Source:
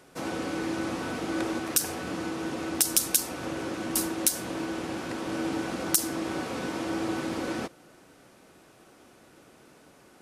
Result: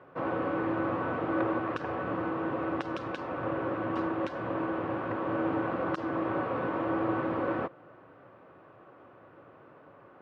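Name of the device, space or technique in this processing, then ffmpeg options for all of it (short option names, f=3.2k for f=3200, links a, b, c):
bass cabinet: -af "highpass=88,equalizer=f=110:t=q:w=4:g=8,equalizer=f=220:t=q:w=4:g=-6,equalizer=f=560:t=q:w=4:g=6,equalizer=f=1.1k:t=q:w=4:g=8,equalizer=f=2.2k:t=q:w=4:g=-5,lowpass=f=2.3k:w=0.5412,lowpass=f=2.3k:w=1.3066"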